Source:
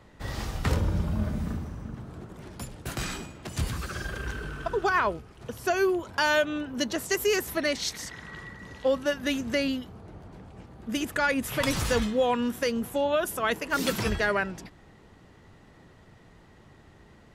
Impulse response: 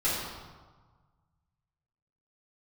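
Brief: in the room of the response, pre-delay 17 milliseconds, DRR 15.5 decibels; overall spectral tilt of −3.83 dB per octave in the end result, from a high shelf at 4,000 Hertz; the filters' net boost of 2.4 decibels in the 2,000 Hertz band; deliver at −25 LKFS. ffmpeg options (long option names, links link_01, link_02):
-filter_complex "[0:a]equalizer=frequency=2000:width_type=o:gain=5,highshelf=frequency=4000:gain=-8.5,asplit=2[link_01][link_02];[1:a]atrim=start_sample=2205,adelay=17[link_03];[link_02][link_03]afir=irnorm=-1:irlink=0,volume=-26dB[link_04];[link_01][link_04]amix=inputs=2:normalize=0,volume=3dB"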